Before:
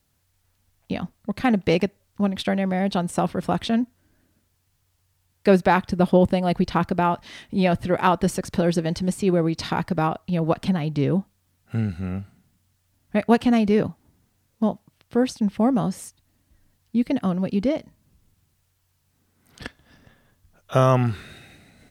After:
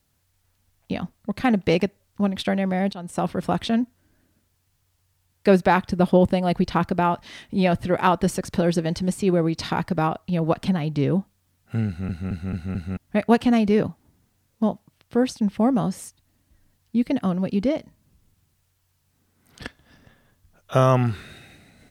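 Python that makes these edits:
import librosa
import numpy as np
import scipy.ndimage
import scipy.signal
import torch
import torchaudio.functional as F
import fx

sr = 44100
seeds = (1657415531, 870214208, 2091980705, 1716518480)

y = fx.edit(x, sr, fx.fade_in_from(start_s=2.93, length_s=0.37, floor_db=-18.5),
    fx.stutter_over(start_s=11.87, slice_s=0.22, count=5), tone=tone)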